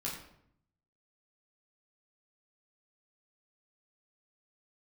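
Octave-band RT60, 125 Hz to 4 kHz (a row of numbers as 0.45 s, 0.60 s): 1.1 s, 0.90 s, 0.75 s, 0.65 s, 0.60 s, 0.50 s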